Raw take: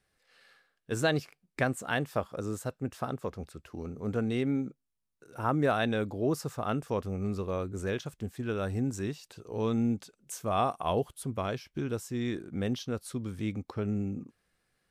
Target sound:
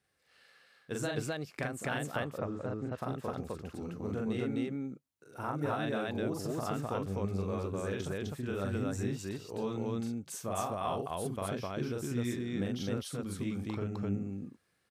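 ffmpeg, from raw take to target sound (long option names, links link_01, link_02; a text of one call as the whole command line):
ffmpeg -i in.wav -filter_complex "[0:a]highpass=71,acompressor=threshold=-30dB:ratio=6,asplit=3[link_01][link_02][link_03];[link_01]afade=type=out:start_time=2.11:duration=0.02[link_04];[link_02]lowpass=2300,afade=type=in:start_time=2.11:duration=0.02,afade=type=out:start_time=2.97:duration=0.02[link_05];[link_03]afade=type=in:start_time=2.97:duration=0.02[link_06];[link_04][link_05][link_06]amix=inputs=3:normalize=0,aecho=1:1:40.82|256.6:0.794|1,volume=-3.5dB" out.wav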